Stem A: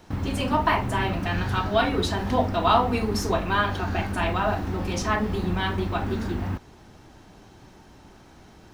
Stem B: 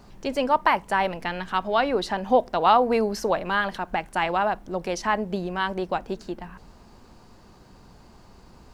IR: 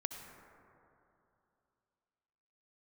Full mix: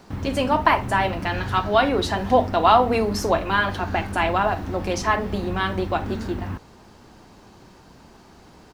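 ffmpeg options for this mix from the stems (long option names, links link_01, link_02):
-filter_complex "[0:a]volume=-1.5dB[link_01];[1:a]highpass=160,volume=-1,adelay=0.4,volume=1.5dB[link_02];[link_01][link_02]amix=inputs=2:normalize=0"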